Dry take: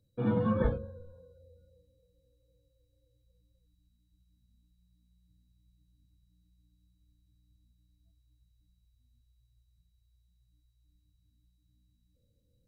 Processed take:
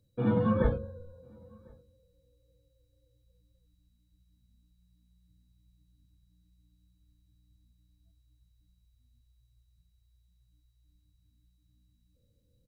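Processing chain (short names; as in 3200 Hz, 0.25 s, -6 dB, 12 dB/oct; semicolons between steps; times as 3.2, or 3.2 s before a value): outdoor echo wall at 180 m, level -29 dB; gain +2 dB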